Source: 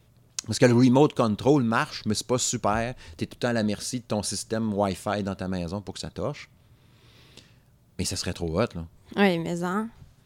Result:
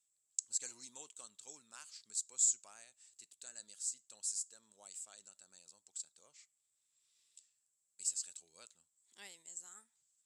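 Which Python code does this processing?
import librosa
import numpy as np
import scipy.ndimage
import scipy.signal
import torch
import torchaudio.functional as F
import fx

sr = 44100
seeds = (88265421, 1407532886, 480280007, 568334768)

y = fx.bandpass_q(x, sr, hz=7700.0, q=13.0)
y = y * 10.0 ** (5.5 / 20.0)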